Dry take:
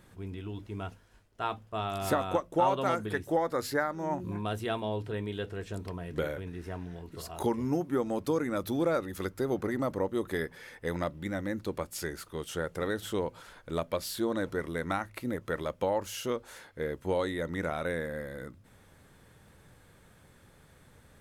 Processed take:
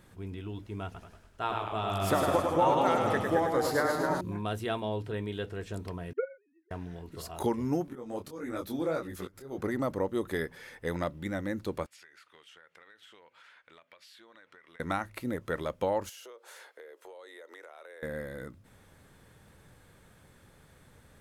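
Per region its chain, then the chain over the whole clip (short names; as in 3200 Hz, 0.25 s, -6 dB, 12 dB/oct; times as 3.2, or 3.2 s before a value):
0.86–4.21 echoes that change speed 84 ms, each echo -1 st, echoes 2, each echo -6 dB + feedback echo 0.102 s, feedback 38%, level -4.5 dB
6.13–6.71 sine-wave speech + upward expander 2.5:1, over -43 dBFS
7.86–9.58 auto swell 0.215 s + upward compressor, threshold -37 dBFS + detuned doubles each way 54 cents
11.86–14.8 band-pass 2200 Hz, Q 1.6 + compressor 16:1, threshold -51 dBFS
16.09–18.03 steep high-pass 390 Hz + compressor 16:1, threshold -45 dBFS
whole clip: dry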